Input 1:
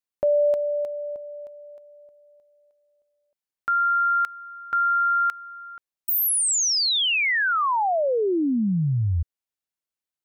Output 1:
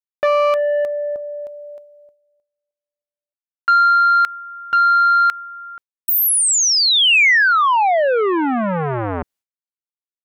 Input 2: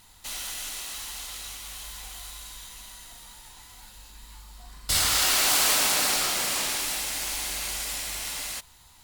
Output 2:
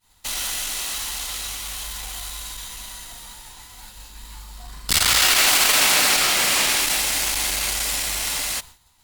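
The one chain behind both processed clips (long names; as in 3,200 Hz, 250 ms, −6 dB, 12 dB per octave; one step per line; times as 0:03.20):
wavefolder on the positive side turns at −16.5 dBFS
dynamic equaliser 2,300 Hz, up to +5 dB, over −35 dBFS, Q 1
in parallel at +2 dB: speech leveller within 3 dB 0.5 s
on the sum: downward expander −35 dBFS, range −33 dB
saturating transformer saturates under 920 Hz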